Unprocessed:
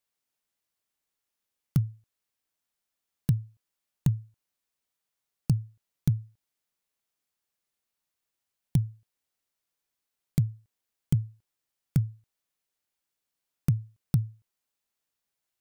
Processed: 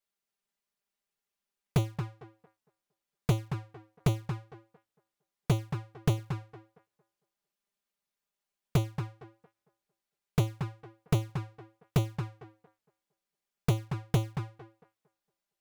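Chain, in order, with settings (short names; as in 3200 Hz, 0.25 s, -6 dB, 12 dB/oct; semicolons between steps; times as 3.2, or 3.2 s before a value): half-waves squared off; tape echo 0.228 s, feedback 30%, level -4 dB, low-pass 2100 Hz; envelope flanger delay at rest 5 ms, full sweep at -18.5 dBFS; gain -4.5 dB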